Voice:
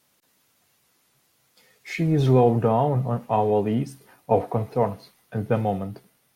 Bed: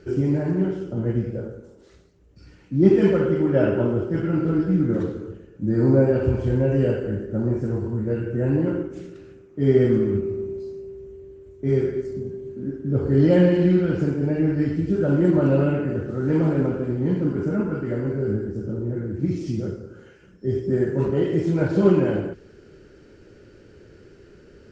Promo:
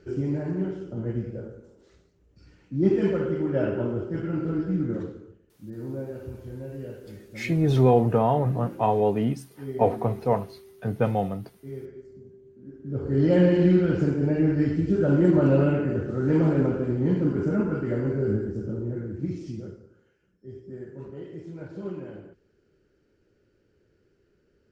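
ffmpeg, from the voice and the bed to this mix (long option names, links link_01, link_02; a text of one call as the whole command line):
ffmpeg -i stem1.wav -i stem2.wav -filter_complex "[0:a]adelay=5500,volume=-1dB[link_01];[1:a]volume=10dB,afade=type=out:start_time=4.87:duration=0.51:silence=0.281838,afade=type=in:start_time=12.63:duration=0.99:silence=0.158489,afade=type=out:start_time=18.36:duration=1.67:silence=0.141254[link_02];[link_01][link_02]amix=inputs=2:normalize=0" out.wav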